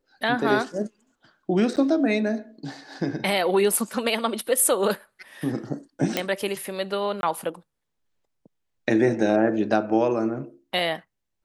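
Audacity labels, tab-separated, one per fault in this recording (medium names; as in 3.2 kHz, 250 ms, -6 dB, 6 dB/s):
1.760000	1.770000	dropout 8.7 ms
6.170000	6.170000	pop -8 dBFS
7.210000	7.230000	dropout 21 ms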